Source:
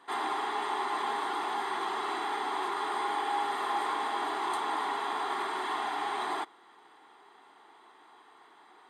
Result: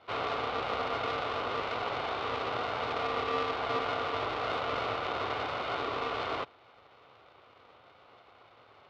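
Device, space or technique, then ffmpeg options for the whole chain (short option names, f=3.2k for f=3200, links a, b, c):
ring modulator pedal into a guitar cabinet: -af "aeval=exprs='val(0)*sgn(sin(2*PI*360*n/s))':c=same,highpass=99,equalizer=f=110:t=q:w=4:g=7,equalizer=f=180:t=q:w=4:g=-6,equalizer=f=960:t=q:w=4:g=4,equalizer=f=1.7k:t=q:w=4:g=-9,lowpass=f=4.1k:w=0.5412,lowpass=f=4.1k:w=1.3066"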